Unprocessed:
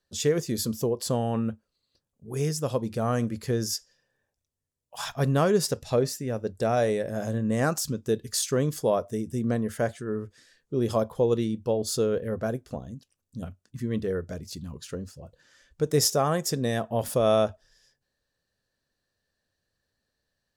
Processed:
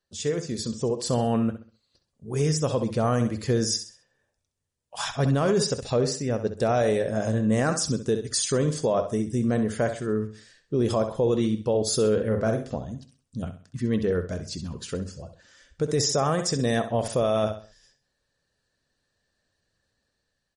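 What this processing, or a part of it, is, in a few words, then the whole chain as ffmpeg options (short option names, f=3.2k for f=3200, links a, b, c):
low-bitrate web radio: -filter_complex "[0:a]asplit=3[a][b][c];[a]afade=t=out:st=12.16:d=0.02[d];[b]asplit=2[e][f];[f]adelay=45,volume=-6dB[g];[e][g]amix=inputs=2:normalize=0,afade=t=in:st=12.16:d=0.02,afade=t=out:st=12.74:d=0.02[h];[c]afade=t=in:st=12.74:d=0.02[i];[d][h][i]amix=inputs=3:normalize=0,aecho=1:1:65|130|195|260:0.282|0.093|0.0307|0.0101,dynaudnorm=f=260:g=7:m=7.5dB,alimiter=limit=-11.5dB:level=0:latency=1:release=14,volume=-3dB" -ar 44100 -c:a libmp3lame -b:a 40k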